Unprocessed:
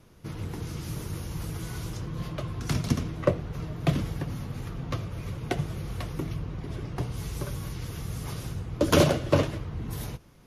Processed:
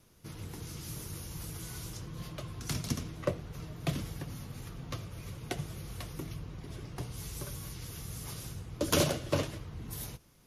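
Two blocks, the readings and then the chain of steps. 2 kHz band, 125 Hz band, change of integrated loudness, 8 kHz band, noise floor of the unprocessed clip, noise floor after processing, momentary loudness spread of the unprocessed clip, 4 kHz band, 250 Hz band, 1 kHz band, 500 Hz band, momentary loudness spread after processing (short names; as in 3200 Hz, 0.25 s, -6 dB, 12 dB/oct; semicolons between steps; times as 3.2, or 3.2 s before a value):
-6.0 dB, -8.5 dB, -7.0 dB, +0.5 dB, -52 dBFS, -60 dBFS, 11 LU, -3.0 dB, -8.5 dB, -7.5 dB, -8.5 dB, 11 LU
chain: high shelf 3700 Hz +11 dB; gain -8.5 dB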